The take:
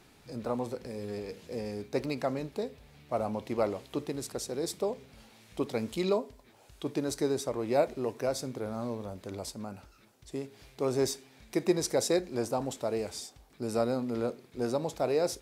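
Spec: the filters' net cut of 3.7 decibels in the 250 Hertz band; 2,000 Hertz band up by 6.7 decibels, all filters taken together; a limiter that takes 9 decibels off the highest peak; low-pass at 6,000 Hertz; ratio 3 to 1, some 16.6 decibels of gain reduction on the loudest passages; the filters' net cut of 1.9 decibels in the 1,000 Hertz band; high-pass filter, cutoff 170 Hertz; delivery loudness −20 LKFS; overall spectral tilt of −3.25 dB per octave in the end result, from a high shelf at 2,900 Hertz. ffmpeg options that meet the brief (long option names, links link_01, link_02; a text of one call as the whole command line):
ffmpeg -i in.wav -af "highpass=170,lowpass=6000,equalizer=frequency=250:width_type=o:gain=-4,equalizer=frequency=1000:width_type=o:gain=-5,equalizer=frequency=2000:width_type=o:gain=7,highshelf=frequency=2900:gain=7,acompressor=threshold=-46dB:ratio=3,volume=28dB,alimiter=limit=-8dB:level=0:latency=1" out.wav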